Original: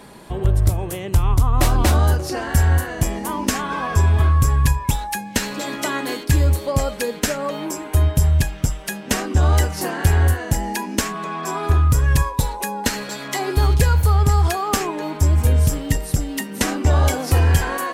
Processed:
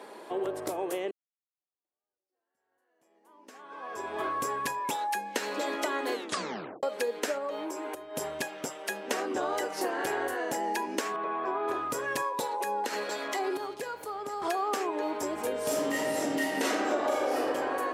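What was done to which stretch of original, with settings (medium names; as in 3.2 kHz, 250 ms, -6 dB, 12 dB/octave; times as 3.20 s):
1.11–4.28 s: fade in exponential
6.13 s: tape stop 0.70 s
7.38–8.17 s: compression 4:1, threshold -29 dBFS
11.16–11.68 s: distance through air 380 m
12.47–14.42 s: compression, threshold -22 dBFS
15.63–17.37 s: reverb throw, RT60 1.6 s, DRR -11.5 dB
whole clip: high-pass 370 Hz 24 dB/octave; tilt EQ -2.5 dB/octave; compression, threshold -25 dBFS; trim -2 dB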